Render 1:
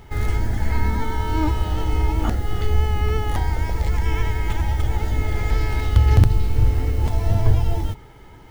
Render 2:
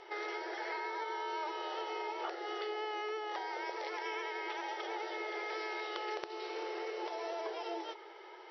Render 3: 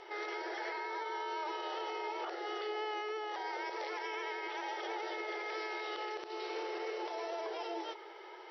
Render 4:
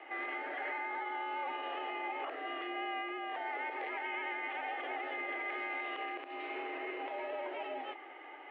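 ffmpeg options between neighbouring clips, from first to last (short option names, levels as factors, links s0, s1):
-af "afftfilt=real='re*between(b*sr/4096,330,5900)':imag='im*between(b*sr/4096,330,5900)':win_size=4096:overlap=0.75,acompressor=threshold=0.0178:ratio=4,volume=0.794"
-af "alimiter=level_in=2.66:limit=0.0631:level=0:latency=1:release=32,volume=0.376,volume=1.19"
-filter_complex "[0:a]highpass=f=330:t=q:w=0.5412,highpass=f=330:t=q:w=1.307,lowpass=f=2900:t=q:w=0.5176,lowpass=f=2900:t=q:w=0.7071,lowpass=f=2900:t=q:w=1.932,afreqshift=-71,acrossover=split=360 2100:gain=0.126 1 0.141[s0][s1][s2];[s0][s1][s2]amix=inputs=3:normalize=0,aexciter=amount=3.6:drive=6.8:freq=2100,volume=1.19"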